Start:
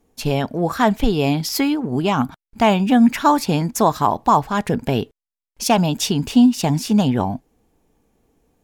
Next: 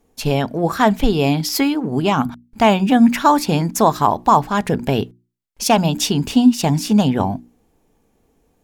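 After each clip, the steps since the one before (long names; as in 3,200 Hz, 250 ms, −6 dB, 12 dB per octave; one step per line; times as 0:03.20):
mains-hum notches 60/120/180/240/300/360 Hz
level +2 dB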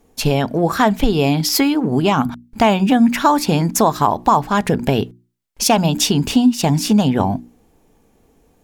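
downward compressor 2 to 1, threshold −20 dBFS, peak gain reduction 8 dB
level +5.5 dB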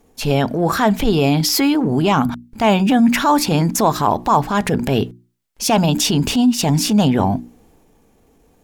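transient designer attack −7 dB, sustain +3 dB
level +1 dB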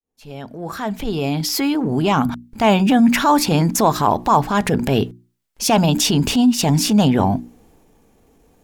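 fade in at the beginning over 2.51 s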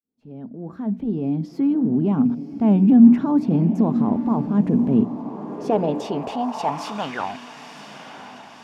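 loose part that buzzes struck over −18 dBFS, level −26 dBFS
feedback delay with all-pass diffusion 1,020 ms, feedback 52%, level −11 dB
band-pass filter sweep 230 Hz → 1,600 Hz, 0:05.06–0:07.26
level +3.5 dB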